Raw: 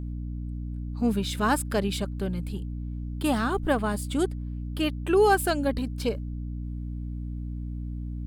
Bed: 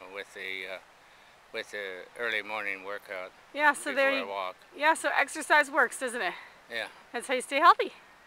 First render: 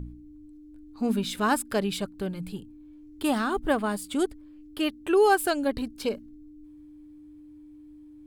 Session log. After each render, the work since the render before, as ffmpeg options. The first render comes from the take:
-af "bandreject=f=60:t=h:w=4,bandreject=f=120:t=h:w=4,bandreject=f=180:t=h:w=4,bandreject=f=240:t=h:w=4"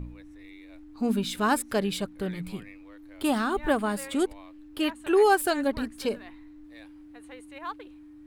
-filter_complex "[1:a]volume=-17.5dB[a];[0:a][a]amix=inputs=2:normalize=0"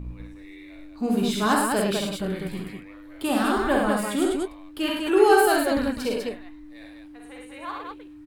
-filter_complex "[0:a]asplit=2[a][b];[b]adelay=21,volume=-13.5dB[c];[a][c]amix=inputs=2:normalize=0,aecho=1:1:48|66|106|200:0.631|0.596|0.562|0.668"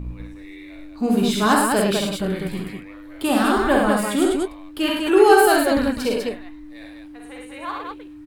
-af "volume=4.5dB,alimiter=limit=-2dB:level=0:latency=1"

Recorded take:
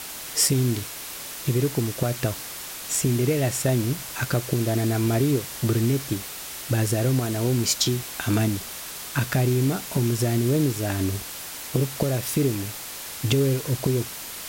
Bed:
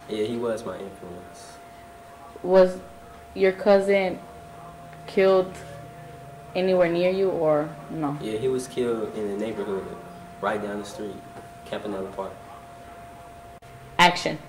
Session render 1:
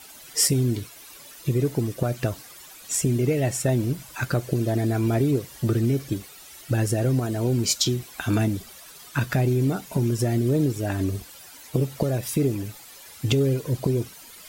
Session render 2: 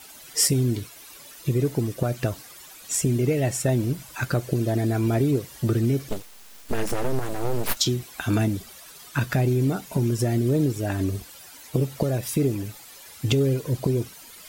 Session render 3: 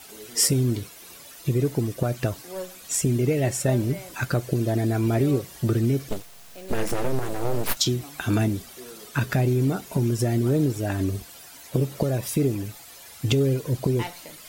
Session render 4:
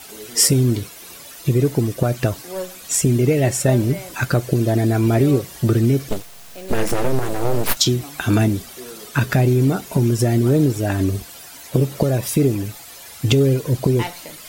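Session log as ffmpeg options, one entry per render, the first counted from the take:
-af "afftdn=nr=13:nf=-36"
-filter_complex "[0:a]asettb=1/sr,asplit=3[a][b][c];[a]atrim=end=6.094[d];[b]atrim=start=6.09:end=7.77,asetpts=PTS-STARTPTS,afade=t=in:d=0.004:c=qsin,afade=t=out:st=1.676:d=0.004:c=qsin,aeval=exprs='abs(val(0))':c=same[e];[c]atrim=start=7.766[f];[d][e]acrossfade=d=0.004:c1=hsin:c2=qsin[g];[g][f]acrossfade=d=0.004:c1=qsin:c2=hsin"
-filter_complex "[1:a]volume=-18.5dB[a];[0:a][a]amix=inputs=2:normalize=0"
-af "volume=6dB,alimiter=limit=-1dB:level=0:latency=1"

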